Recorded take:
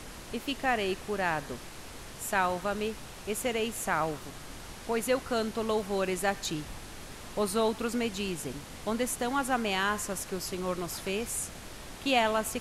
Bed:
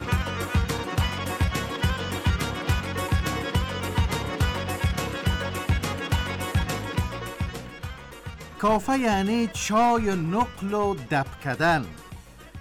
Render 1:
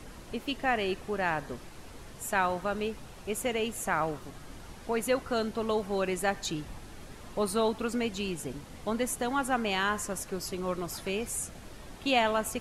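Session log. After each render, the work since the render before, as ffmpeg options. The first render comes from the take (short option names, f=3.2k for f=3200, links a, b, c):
-af "afftdn=nr=7:nf=-45"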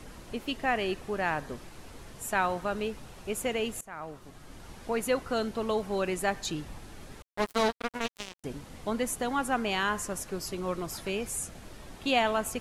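-filter_complex "[0:a]asettb=1/sr,asplit=3[a][b][c];[a]atrim=end=7.224[d];[b]atrim=start=7.22:end=8.44,asetpts=PTS-STARTPTS,afade=t=in:d=0.004:c=qsin,afade=t=out:st=1.216:d=0.004:c=qsin,acrusher=bits=3:mix=0:aa=0.5[e];[c]atrim=start=8.436[f];[d][e]acrossfade=d=0.004:c1=hsin:c2=qsin[g];[g][f]acrossfade=d=0.004:c1=qsin:c2=hsin,asplit=2[h][i];[h]atrim=end=3.81,asetpts=PTS-STARTPTS,afade=t=out:st=3.806:d=0.004:c=hsin:silence=0.0944061[j];[i]atrim=start=3.81,asetpts=PTS-STARTPTS,afade=t=in:d=0.94:silence=0.0944061[k];[j][k]concat=n=2:v=0:a=1"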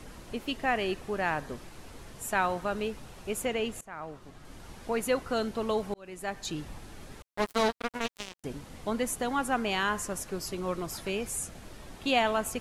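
-filter_complex "[0:a]asettb=1/sr,asplit=3[a][b][c];[a]atrim=end=3.454[d];[b]atrim=start=3.45:end=4.45,asetpts=PTS-STARTPTS,afade=t=in:d=0.004:c=qsin,afade=t=out:st=0.996:d=0.004:c=qsin,highshelf=f=8.3k:g=-8.5[e];[c]atrim=start=4.446[f];[d][e]acrossfade=d=0.004:c1=hsin:c2=qsin[g];[g][f]acrossfade=d=0.004:c1=qsin:c2=hsin,asplit=2[h][i];[h]atrim=end=5.94,asetpts=PTS-STARTPTS,afade=t=out:st=5.936:d=0.004:c=hsin[j];[i]atrim=start=5.94,asetpts=PTS-STARTPTS,afade=t=in:d=0.69[k];[j][k]concat=n=2:v=0:a=1"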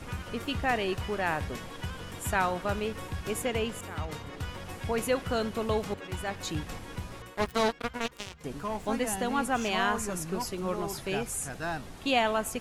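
-filter_complex "[1:a]volume=-13dB[a];[0:a][a]amix=inputs=2:normalize=0"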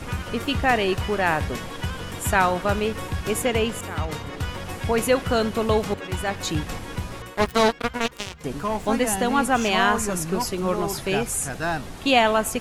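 -af "volume=8dB"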